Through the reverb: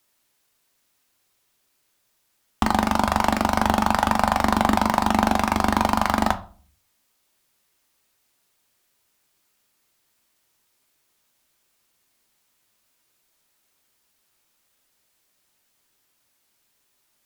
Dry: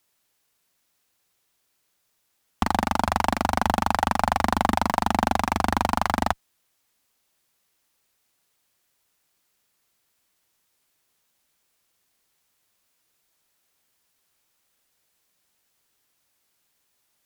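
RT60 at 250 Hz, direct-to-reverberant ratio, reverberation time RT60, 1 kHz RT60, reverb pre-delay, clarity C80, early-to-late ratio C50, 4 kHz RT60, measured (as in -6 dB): 0.50 s, 7.5 dB, 0.40 s, 0.40 s, 3 ms, 21.5 dB, 16.0 dB, 0.30 s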